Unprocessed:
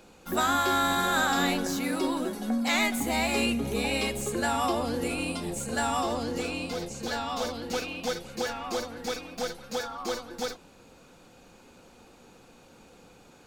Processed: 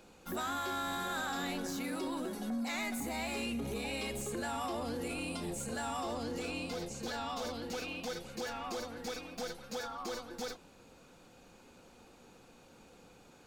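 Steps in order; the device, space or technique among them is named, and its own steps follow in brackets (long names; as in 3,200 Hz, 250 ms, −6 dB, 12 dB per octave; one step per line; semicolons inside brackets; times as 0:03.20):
0:02.61–0:03.19: notch filter 3,200 Hz, Q 6.1
soft clipper into limiter (soft clipping −19 dBFS, distortion −20 dB; brickwall limiter −26 dBFS, peak gain reduction 6 dB)
level −4.5 dB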